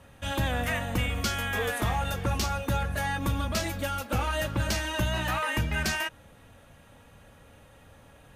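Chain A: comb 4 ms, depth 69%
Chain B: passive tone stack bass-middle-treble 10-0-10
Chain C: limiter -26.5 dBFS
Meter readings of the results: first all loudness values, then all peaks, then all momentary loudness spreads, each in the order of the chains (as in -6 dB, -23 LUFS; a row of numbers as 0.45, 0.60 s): -28.0, -35.0, -35.0 LUFS; -13.5, -18.0, -26.5 dBFS; 3, 4, 20 LU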